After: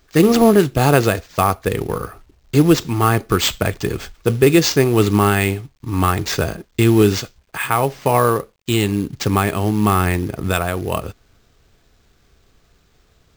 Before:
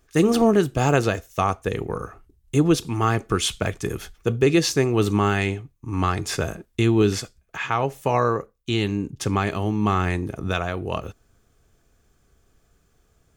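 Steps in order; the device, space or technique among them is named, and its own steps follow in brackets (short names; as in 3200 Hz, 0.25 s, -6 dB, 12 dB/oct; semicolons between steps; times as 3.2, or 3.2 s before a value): early companding sampler (sample-rate reducer 11000 Hz, jitter 0%; companded quantiser 6-bit); gain +5.5 dB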